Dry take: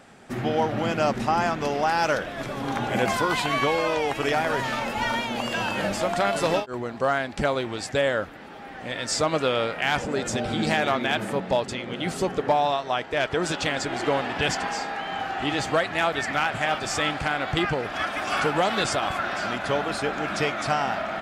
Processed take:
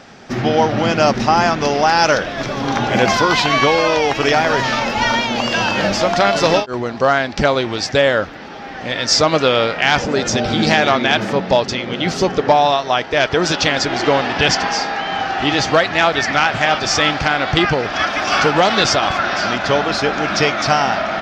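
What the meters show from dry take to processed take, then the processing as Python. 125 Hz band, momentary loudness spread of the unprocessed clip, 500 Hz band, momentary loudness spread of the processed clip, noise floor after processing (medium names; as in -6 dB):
+9.0 dB, 6 LU, +9.0 dB, 6 LU, -30 dBFS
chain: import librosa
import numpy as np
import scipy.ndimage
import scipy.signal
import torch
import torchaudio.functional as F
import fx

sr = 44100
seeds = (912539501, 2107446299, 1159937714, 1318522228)

y = fx.high_shelf_res(x, sr, hz=7200.0, db=-9.5, q=3.0)
y = F.gain(torch.from_numpy(y), 9.0).numpy()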